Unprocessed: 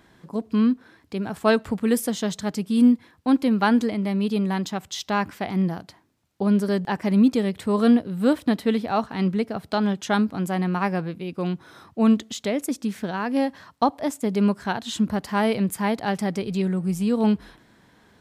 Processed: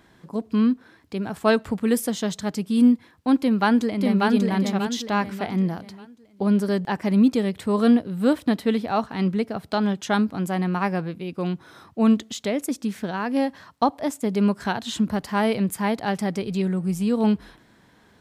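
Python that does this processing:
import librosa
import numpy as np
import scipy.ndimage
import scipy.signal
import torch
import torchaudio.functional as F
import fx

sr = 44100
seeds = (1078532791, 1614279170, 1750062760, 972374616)

y = fx.echo_throw(x, sr, start_s=3.37, length_s=0.92, ms=590, feedback_pct=35, wet_db=-2.0)
y = fx.band_squash(y, sr, depth_pct=40, at=(14.6, 15.23))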